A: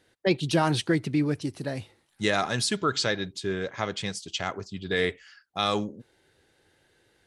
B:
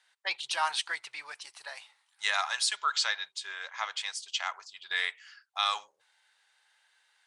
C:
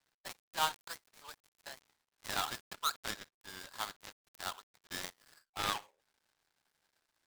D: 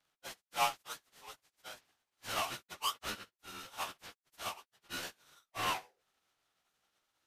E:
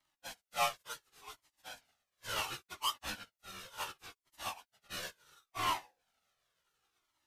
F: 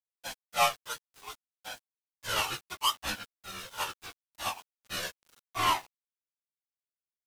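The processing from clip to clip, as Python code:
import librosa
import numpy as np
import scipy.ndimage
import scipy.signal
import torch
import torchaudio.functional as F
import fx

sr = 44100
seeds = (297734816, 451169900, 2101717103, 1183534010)

y1 = scipy.signal.sosfilt(scipy.signal.ellip(3, 1.0, 50, [910.0, 9400.0], 'bandpass', fs=sr, output='sos'), x)
y2 = fx.dead_time(y1, sr, dead_ms=0.23)
y3 = fx.partial_stretch(y2, sr, pct=91)
y3 = F.gain(torch.from_numpy(y3), 2.5).numpy()
y4 = fx.comb_cascade(y3, sr, direction='falling', hz=0.7)
y4 = F.gain(torch.from_numpy(y4), 4.0).numpy()
y5 = np.where(np.abs(y4) >= 10.0 ** (-56.0 / 20.0), y4, 0.0)
y5 = F.gain(torch.from_numpy(y5), 7.0).numpy()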